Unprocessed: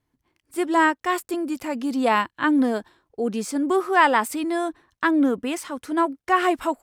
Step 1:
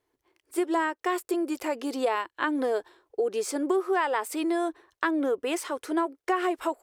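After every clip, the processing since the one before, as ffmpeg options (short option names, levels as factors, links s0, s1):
-af "lowshelf=f=290:t=q:w=3:g=-10,acompressor=threshold=0.0631:ratio=4"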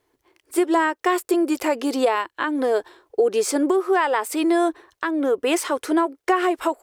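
-af "alimiter=limit=0.126:level=0:latency=1:release=464,volume=2.66"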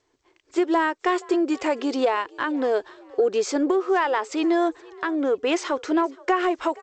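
-filter_complex "[0:a]asplit=3[s0][s1][s2];[s1]adelay=473,afreqshift=47,volume=0.0668[s3];[s2]adelay=946,afreqshift=94,volume=0.024[s4];[s0][s3][s4]amix=inputs=3:normalize=0,acontrast=23,volume=0.473" -ar 16000 -c:a g722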